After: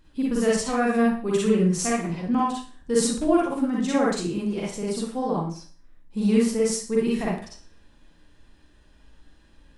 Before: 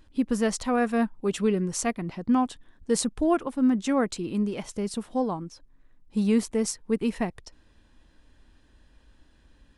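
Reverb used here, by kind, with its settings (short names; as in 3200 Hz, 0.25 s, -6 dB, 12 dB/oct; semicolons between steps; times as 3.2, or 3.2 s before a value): Schroeder reverb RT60 0.42 s, DRR -5.5 dB; gain -3 dB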